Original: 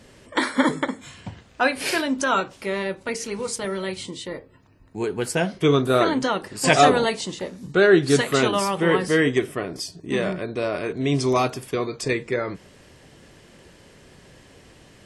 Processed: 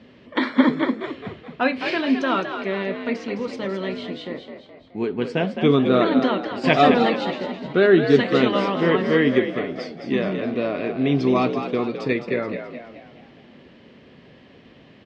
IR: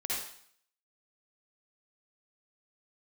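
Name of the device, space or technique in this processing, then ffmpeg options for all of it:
frequency-shifting delay pedal into a guitar cabinet: -filter_complex "[0:a]asplit=6[link_01][link_02][link_03][link_04][link_05][link_06];[link_02]adelay=212,afreqshift=57,volume=-8dB[link_07];[link_03]adelay=424,afreqshift=114,volume=-14.7dB[link_08];[link_04]adelay=636,afreqshift=171,volume=-21.5dB[link_09];[link_05]adelay=848,afreqshift=228,volume=-28.2dB[link_10];[link_06]adelay=1060,afreqshift=285,volume=-35dB[link_11];[link_01][link_07][link_08][link_09][link_10][link_11]amix=inputs=6:normalize=0,highpass=82,equalizer=frequency=98:width_type=q:width=4:gain=-5,equalizer=frequency=240:width_type=q:width=4:gain=8,equalizer=frequency=870:width_type=q:width=4:gain=-3,equalizer=frequency=1500:width_type=q:width=4:gain=-4,lowpass=frequency=3800:width=0.5412,lowpass=frequency=3800:width=1.3066"

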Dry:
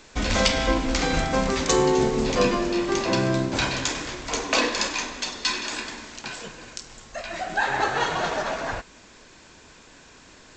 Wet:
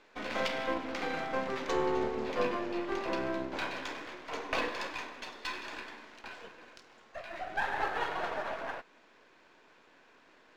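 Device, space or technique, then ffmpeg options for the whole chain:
crystal radio: -af "highpass=320,lowpass=2600,aeval=exprs='if(lt(val(0),0),0.447*val(0),val(0))':channel_layout=same,volume=-6dB"

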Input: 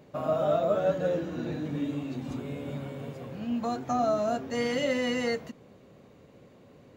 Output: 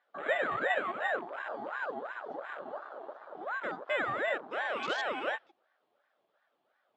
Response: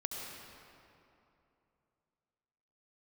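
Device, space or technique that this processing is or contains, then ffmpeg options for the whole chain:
voice changer toy: -filter_complex "[0:a]aeval=exprs='val(0)*sin(2*PI*930*n/s+930*0.45/2.8*sin(2*PI*2.8*n/s))':channel_layout=same,highpass=420,equalizer=frequency=580:width_type=q:width=4:gain=7,equalizer=frequency=990:width_type=q:width=4:gain=-8,equalizer=frequency=3300:width_type=q:width=4:gain=3,lowpass=frequency=4100:width=0.5412,lowpass=frequency=4100:width=1.3066,asettb=1/sr,asplit=3[link_01][link_02][link_03];[link_01]atrim=end=1.544[link_04];[link_02]atrim=start=1.54:end=1.94,asetpts=PTS-STARTPTS,afade=type=in:duration=0.004:curve=qsin,afade=type=out:start_time=0.396:duration=0.004:curve=qsin,highshelf=frequency=5000:gain=7.5[link_05];[link_03]atrim=start=1.936[link_06];[link_04][link_05]acrossfade=duration=0.004:curve1=hsin:curve2=qsin[link_07];[link_07][link_06]acrossfade=duration=0.004:curve1=qsin:curve2=hsin,afwtdn=0.0112,bass=frequency=250:gain=6,treble=frequency=4000:gain=8,volume=-1.5dB"

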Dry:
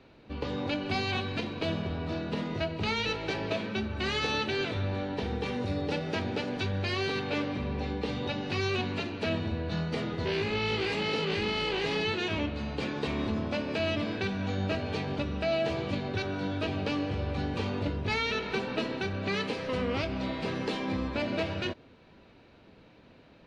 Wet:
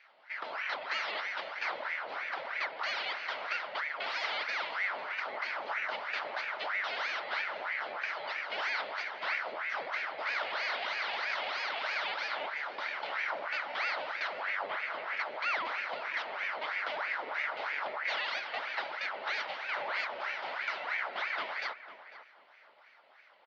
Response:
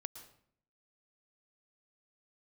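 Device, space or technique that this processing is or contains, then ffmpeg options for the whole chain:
voice changer toy: -filter_complex "[0:a]asettb=1/sr,asplit=3[link_01][link_02][link_03];[link_01]atrim=end=14.414[link_04];[link_02]atrim=start=14.41:end=15.17,asetpts=PTS-STARTPTS,afade=type=in:duration=0.004:curve=qsin,afade=type=out:start_time=0.756:duration=0.004:curve=qsin,acrossover=split=2600[link_05][link_06];[link_06]acompressor=threshold=-53dB:ratio=4:attack=1:release=60[link_07];[link_05][link_07]amix=inputs=2:normalize=0[link_08];[link_03]atrim=start=15.166[link_09];[link_04][link_08]acrossfade=duration=0.004:curve1=hsin:curve2=qsin[link_10];[link_10][link_09]acrossfade=duration=0.004:curve1=qsin:curve2=hsin,aeval=exprs='val(0)*sin(2*PI*1200*n/s+1200*0.75/3.1*sin(2*PI*3.1*n/s))':channel_layout=same,highpass=580,equalizer=frequency=610:width_type=q:width=4:gain=7,equalizer=frequency=870:width_type=q:width=4:gain=4,equalizer=frequency=1400:width_type=q:width=4:gain=5,equalizer=frequency=2100:width_type=q:width=4:gain=7,equalizer=frequency=3000:width_type=q:width=4:gain=4,equalizer=frequency=4400:width_type=q:width=4:gain=3,lowpass=frequency=4900:width=0.5412,lowpass=frequency=4900:width=1.3066,asplit=2[link_11][link_12];[link_12]adelay=499,lowpass=frequency=1800:poles=1,volume=-12dB,asplit=2[link_13][link_14];[link_14]adelay=499,lowpass=frequency=1800:poles=1,volume=0.26,asplit=2[link_15][link_16];[link_16]adelay=499,lowpass=frequency=1800:poles=1,volume=0.26[link_17];[link_11][link_13][link_15][link_17]amix=inputs=4:normalize=0,volume=-5.5dB"

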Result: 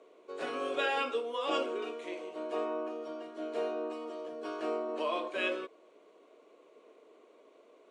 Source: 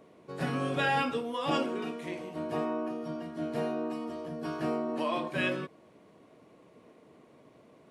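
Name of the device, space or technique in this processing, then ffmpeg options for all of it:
phone speaker on a table: -af "highpass=frequency=360:width=0.5412,highpass=frequency=360:width=1.3066,equalizer=frequency=420:width_type=q:width=4:gain=3,equalizer=frequency=830:width_type=q:width=4:gain=-6,equalizer=frequency=1800:width_type=q:width=4:gain=-7,equalizer=frequency=5100:width_type=q:width=4:gain=-7,lowpass=frequency=8000:width=0.5412,lowpass=frequency=8000:width=1.3066"

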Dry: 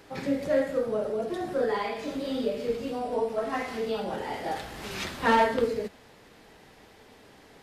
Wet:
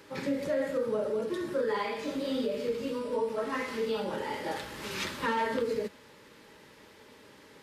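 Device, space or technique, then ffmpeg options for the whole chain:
PA system with an anti-feedback notch: -af "highpass=frequency=130:poles=1,asuperstop=centerf=720:order=8:qfactor=4.5,alimiter=limit=-21.5dB:level=0:latency=1:release=75"

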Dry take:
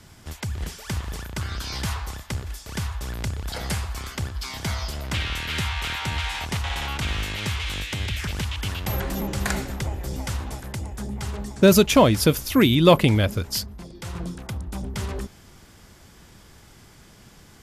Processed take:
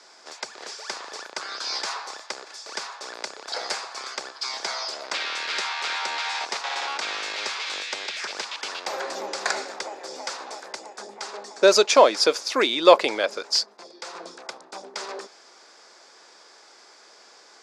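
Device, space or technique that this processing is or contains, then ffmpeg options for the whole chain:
phone speaker on a table: -af "highpass=frequency=440:width=0.5412,highpass=frequency=440:width=1.3066,equalizer=frequency=2000:width_type=q:width=4:gain=-3,equalizer=frequency=3000:width_type=q:width=4:gain=-8,equalizer=frequency=4800:width_type=q:width=4:gain=5,lowpass=frequency=7000:width=0.5412,lowpass=frequency=7000:width=1.3066,volume=3.5dB"

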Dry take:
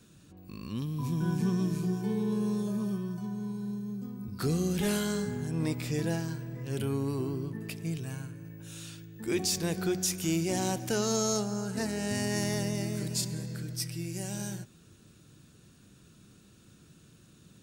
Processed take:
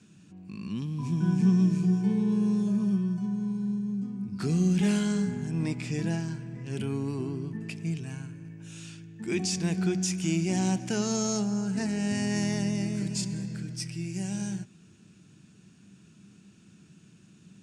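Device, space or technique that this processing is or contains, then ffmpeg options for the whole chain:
car door speaker: -af "highpass=100,equalizer=frequency=190:width_type=q:width=4:gain=9,equalizer=frequency=520:width_type=q:width=4:gain=-8,equalizer=frequency=1200:width_type=q:width=4:gain=-4,equalizer=frequency=2500:width_type=q:width=4:gain=4,equalizer=frequency=3900:width_type=q:width=4:gain=-5,lowpass=frequency=8500:width=0.5412,lowpass=frequency=8500:width=1.3066"

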